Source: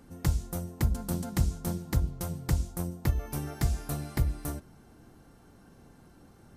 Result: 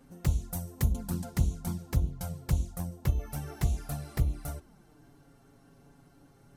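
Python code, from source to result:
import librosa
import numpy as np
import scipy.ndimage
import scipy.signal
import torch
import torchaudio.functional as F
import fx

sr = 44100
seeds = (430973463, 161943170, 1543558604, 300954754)

y = fx.high_shelf(x, sr, hz=5900.0, db=8.0, at=(0.53, 0.93))
y = fx.env_flanger(y, sr, rest_ms=8.2, full_db=-23.5)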